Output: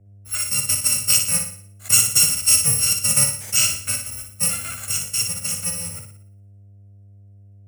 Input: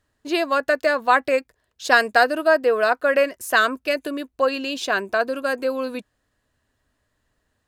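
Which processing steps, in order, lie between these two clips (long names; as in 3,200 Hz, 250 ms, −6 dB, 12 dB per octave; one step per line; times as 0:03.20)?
samples in bit-reversed order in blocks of 128 samples
hum with harmonics 100 Hz, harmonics 7, −46 dBFS −8 dB per octave
graphic EQ with 10 bands 125 Hz +10 dB, 500 Hz +4 dB, 2,000 Hz +7 dB, 4,000 Hz −5 dB, 8,000 Hz +11 dB
on a send: flutter between parallel walls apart 10.1 metres, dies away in 0.59 s
on the sum: multiband upward and downward expander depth 40%
level −6 dB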